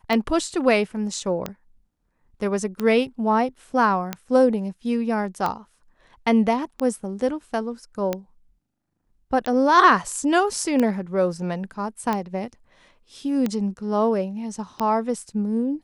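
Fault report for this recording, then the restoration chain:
scratch tick 45 rpm −11 dBFS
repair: click removal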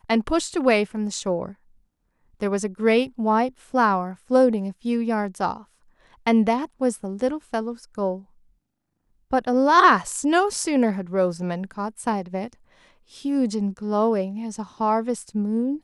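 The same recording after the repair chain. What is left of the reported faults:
none of them is left

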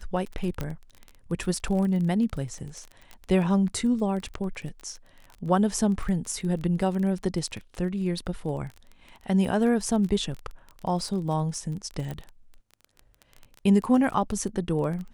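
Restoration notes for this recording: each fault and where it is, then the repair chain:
surface crackle 21 per second −32 dBFS
0:00.61: click −16 dBFS
0:12.11: click −22 dBFS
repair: click removal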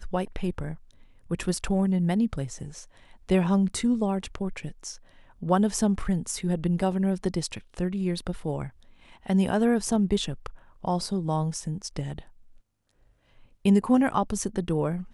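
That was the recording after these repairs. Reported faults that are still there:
none of them is left

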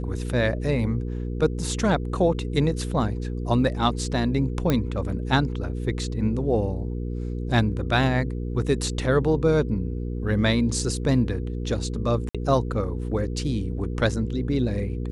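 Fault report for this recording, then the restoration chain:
mains hum 60 Hz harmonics 8 −29 dBFS
0:04.70: click −9 dBFS
0:12.29–0:12.35: drop-out 56 ms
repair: click removal
hum removal 60 Hz, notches 8
repair the gap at 0:12.29, 56 ms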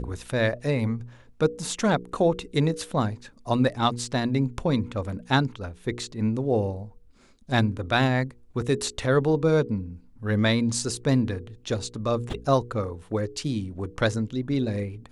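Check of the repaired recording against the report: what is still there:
none of them is left

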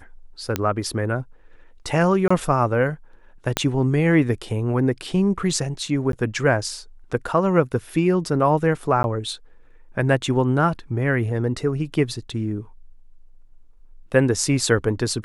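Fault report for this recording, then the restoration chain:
0:00.56: click −7 dBFS
0:02.28–0:02.31: drop-out 25 ms
0:03.57: click −4 dBFS
0:06.12–0:06.13: drop-out 12 ms
0:09.03–0:09.04: drop-out 11 ms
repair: click removal
repair the gap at 0:02.28, 25 ms
repair the gap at 0:06.12, 12 ms
repair the gap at 0:09.03, 11 ms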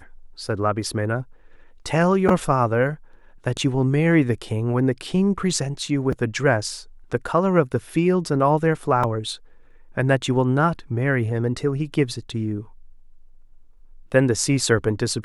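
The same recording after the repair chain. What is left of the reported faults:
0:03.57: click

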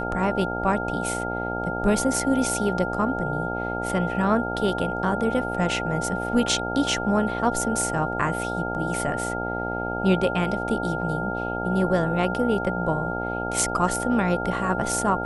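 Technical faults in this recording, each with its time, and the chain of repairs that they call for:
mains buzz 60 Hz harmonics 15 −30 dBFS
whistle 1,400 Hz −30 dBFS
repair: hum removal 60 Hz, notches 15
notch filter 1,400 Hz, Q 30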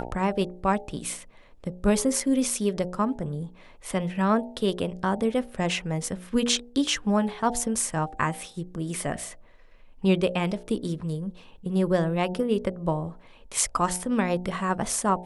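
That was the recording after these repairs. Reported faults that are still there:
none of them is left

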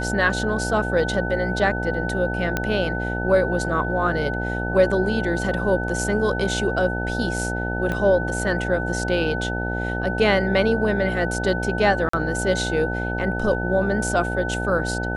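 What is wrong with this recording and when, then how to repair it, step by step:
mains buzz 60 Hz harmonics 15 −27 dBFS
whistle 1,500 Hz −28 dBFS
0:02.57: click −8 dBFS
0:07.92: click −14 dBFS
0:12.09–0:12.13: drop-out 44 ms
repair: click removal
notch filter 1,500 Hz, Q 30
hum removal 60 Hz, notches 15
repair the gap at 0:12.09, 44 ms

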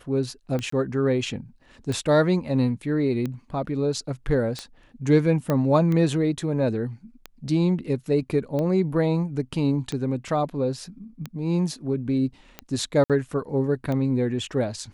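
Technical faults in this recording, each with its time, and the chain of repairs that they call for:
scratch tick 45 rpm −17 dBFS
0:00.70–0:00.72: drop-out 24 ms
0:05.50: click −12 dBFS
0:13.04–0:13.10: drop-out 57 ms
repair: click removal
repair the gap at 0:00.70, 24 ms
repair the gap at 0:13.04, 57 ms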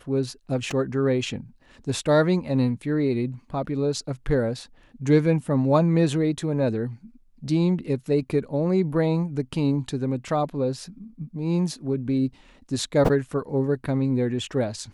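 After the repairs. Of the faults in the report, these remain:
0:05.50: click

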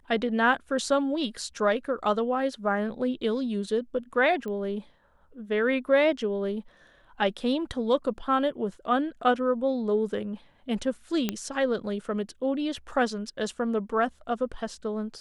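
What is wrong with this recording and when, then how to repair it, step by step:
0:04.48: click −25 dBFS
0:11.29: click −12 dBFS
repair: click removal

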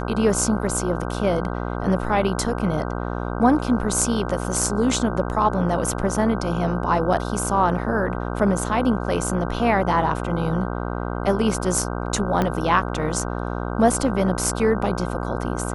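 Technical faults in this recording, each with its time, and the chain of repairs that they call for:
mains buzz 60 Hz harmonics 26 −27 dBFS
0:12.42: click −9 dBFS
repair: click removal
hum removal 60 Hz, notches 26

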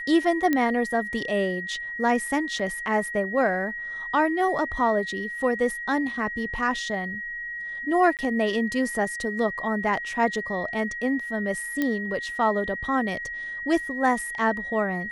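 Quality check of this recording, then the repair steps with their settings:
whistle 1,900 Hz −31 dBFS
0:00.53: click −11 dBFS
0:02.59–0:02.60: drop-out 5.1 ms
0:08.17–0:08.19: drop-out 18 ms
0:11.82: click −12 dBFS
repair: click removal
notch filter 1,900 Hz, Q 30
repair the gap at 0:02.59, 5.1 ms
repair the gap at 0:08.17, 18 ms

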